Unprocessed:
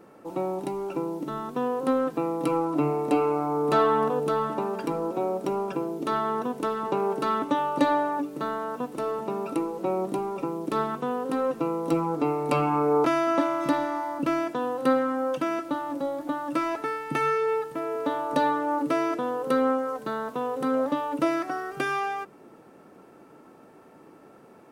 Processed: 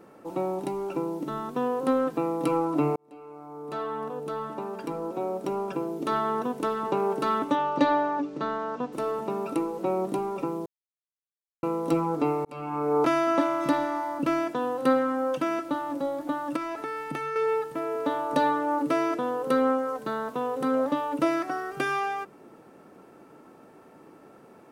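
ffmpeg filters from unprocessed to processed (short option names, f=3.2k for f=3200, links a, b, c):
-filter_complex "[0:a]asettb=1/sr,asplit=3[a][b][c];[a]atrim=end=7.554[d];[b]atrim=start=7.55:end=8.93,asetpts=PTS-STARTPTS,afade=t=in:d=0.004:c=qsin,afade=t=out:st=1.376:d=0.004:c=qsin,lowpass=f=6.2k:w=0.5412,lowpass=f=6.2k:w=1.3066[e];[c]atrim=start=8.926[f];[d][e]acrossfade=d=0.004:c1=hsin:c2=qsin[g];[g][f]acrossfade=d=0.004:c1=qsin:c2=hsin,asettb=1/sr,asplit=3[h][i][j];[h]atrim=end=16.564[k];[i]atrim=start=16.56:end=17.36,asetpts=PTS-STARTPTS,afade=t=in:d=0.004:c=qsin,afade=t=out:st=0.796:d=0.004:c=qsin,acompressor=threshold=-28dB:ratio=6:attack=3.2:release=140:knee=1:detection=peak[l];[j]atrim=start=17.356[m];[k][l]acrossfade=d=0.004:c1=hsin:c2=qsin[n];[n][m]acrossfade=d=0.004:c1=qsin:c2=hsin,asplit=5[o][p][q][r][s];[o]atrim=end=2.96,asetpts=PTS-STARTPTS,afade=t=out:st=2.956:d=0.004:c=hsin[t];[p]atrim=start=2.96:end=10.66,asetpts=PTS-STARTPTS,afade=t=in:d=3.21,afade=t=out:st=7.696:d=0.004:c=hsin[u];[q]atrim=start=10.66:end=11.63,asetpts=PTS-STARTPTS,volume=0[v];[r]atrim=start=11.63:end=12.45,asetpts=PTS-STARTPTS,afade=t=in:d=0.004:c=hsin,afade=t=out:st=0.816:d=0.004:c=hsin[w];[s]atrim=start=12.45,asetpts=PTS-STARTPTS,afade=t=in:d=0.62[x];[t][u][v][w][x]concat=n=5:v=0:a=1"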